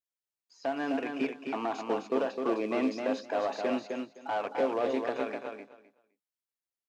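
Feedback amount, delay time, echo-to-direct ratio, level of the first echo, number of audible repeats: 17%, 258 ms, −5.0 dB, −5.0 dB, 2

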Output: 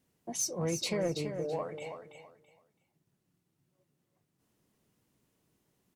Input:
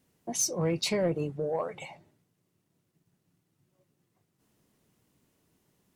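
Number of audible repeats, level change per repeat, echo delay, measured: 3, −12.5 dB, 331 ms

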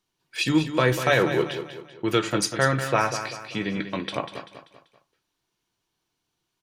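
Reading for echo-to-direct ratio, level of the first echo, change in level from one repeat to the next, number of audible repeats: −9.0 dB, −10.0 dB, −7.5 dB, 4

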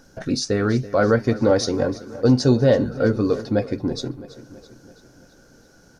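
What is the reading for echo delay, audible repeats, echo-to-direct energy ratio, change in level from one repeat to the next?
331 ms, 4, −15.5 dB, −5.0 dB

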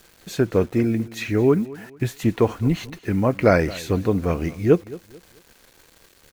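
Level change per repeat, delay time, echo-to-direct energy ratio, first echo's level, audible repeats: −10.0 dB, 219 ms, −19.0 dB, −19.5 dB, 2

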